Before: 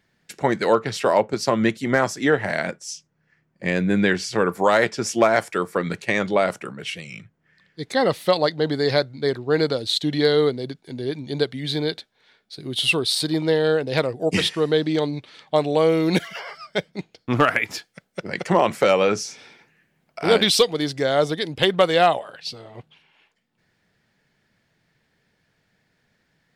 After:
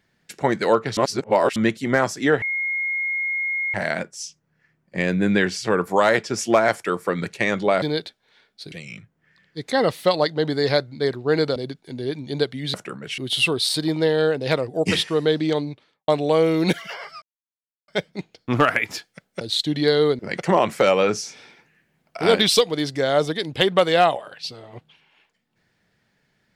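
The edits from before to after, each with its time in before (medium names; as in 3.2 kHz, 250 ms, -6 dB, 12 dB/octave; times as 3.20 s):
0.97–1.56 s: reverse
2.42 s: add tone 2.15 kHz -21.5 dBFS 1.32 s
6.50–6.94 s: swap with 11.74–12.64 s
9.78–10.56 s: move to 18.21 s
14.98–15.54 s: studio fade out
16.68 s: insert silence 0.66 s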